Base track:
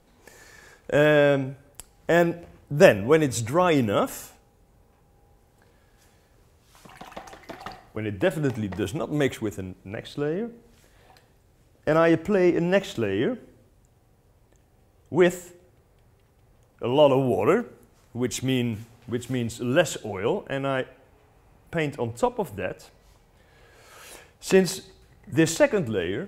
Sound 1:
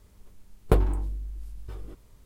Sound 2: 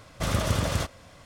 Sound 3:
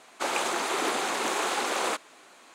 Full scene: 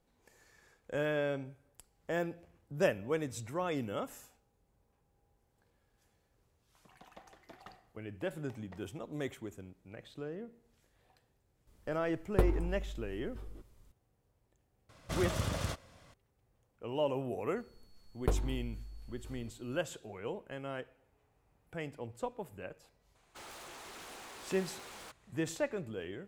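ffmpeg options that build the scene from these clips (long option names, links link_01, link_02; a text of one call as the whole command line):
ffmpeg -i bed.wav -i cue0.wav -i cue1.wav -i cue2.wav -filter_complex "[1:a]asplit=2[link_01][link_02];[0:a]volume=-15dB[link_03];[link_02]aeval=exprs='val(0)+0.00112*sin(2*PI*4400*n/s)':channel_layout=same[link_04];[3:a]aeval=exprs='0.0422*(abs(mod(val(0)/0.0422+3,4)-2)-1)':channel_layout=same[link_05];[link_01]atrim=end=2.25,asetpts=PTS-STARTPTS,volume=-8dB,afade=type=in:duration=0.004:curve=hsin,afade=type=out:start_time=2.246:duration=0.004:curve=hsin,adelay=11670[link_06];[2:a]atrim=end=1.25,asetpts=PTS-STARTPTS,volume=-9dB,afade=type=in:duration=0.004:curve=hsin,afade=type=out:start_time=1.246:duration=0.004:curve=hsin,adelay=14890[link_07];[link_04]atrim=end=2.25,asetpts=PTS-STARTPTS,volume=-10.5dB,afade=type=in:duration=0.004:curve=hsin,afade=type=out:start_time=2.246:duration=0.004:curve=hsin,adelay=17560[link_08];[link_05]atrim=end=2.54,asetpts=PTS-STARTPTS,volume=-17.5dB,afade=type=in:duration=0.004:curve=hsin,afade=type=out:start_time=2.536:duration=0.004:curve=hsin,adelay=23150[link_09];[link_03][link_06][link_07][link_08][link_09]amix=inputs=5:normalize=0" out.wav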